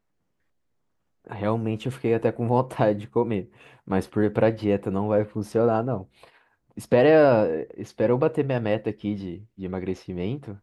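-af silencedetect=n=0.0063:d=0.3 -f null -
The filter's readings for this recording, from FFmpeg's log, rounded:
silence_start: 0.00
silence_end: 1.27 | silence_duration: 1.27
silence_start: 6.28
silence_end: 6.77 | silence_duration: 0.49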